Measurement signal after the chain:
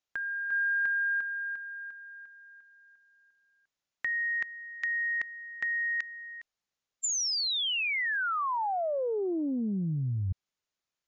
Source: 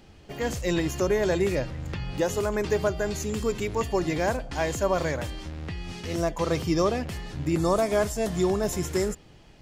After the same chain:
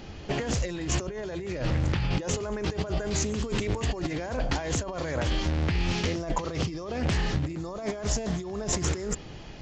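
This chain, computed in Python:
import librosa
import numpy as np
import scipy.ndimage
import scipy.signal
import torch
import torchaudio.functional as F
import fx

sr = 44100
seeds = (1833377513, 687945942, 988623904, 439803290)

y = fx.brickwall_lowpass(x, sr, high_hz=7300.0)
y = fx.over_compress(y, sr, threshold_db=-34.0, ratio=-1.0)
y = fx.doppler_dist(y, sr, depth_ms=0.35)
y = y * 10.0 ** (4.0 / 20.0)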